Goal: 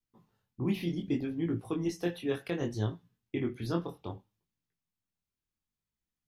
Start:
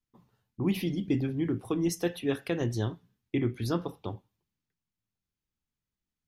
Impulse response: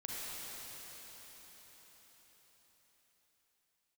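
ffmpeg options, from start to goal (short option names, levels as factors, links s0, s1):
-filter_complex "[0:a]flanger=delay=17.5:depth=6.5:speed=0.65,acrossover=split=5100[s0][s1];[s1]acompressor=threshold=0.00224:ratio=4:attack=1:release=60[s2];[s0][s2]amix=inputs=2:normalize=0"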